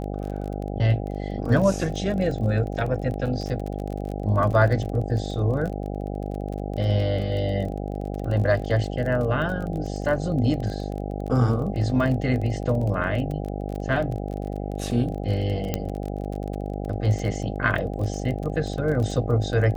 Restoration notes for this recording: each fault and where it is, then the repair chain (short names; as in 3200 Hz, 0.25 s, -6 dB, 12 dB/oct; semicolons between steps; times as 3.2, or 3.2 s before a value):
buzz 50 Hz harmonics 16 -30 dBFS
crackle 27/s -30 dBFS
15.74 pop -10 dBFS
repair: de-click; de-hum 50 Hz, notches 16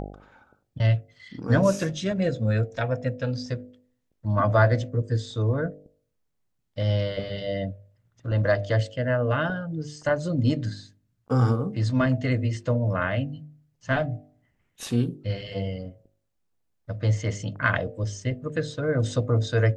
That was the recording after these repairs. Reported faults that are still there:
none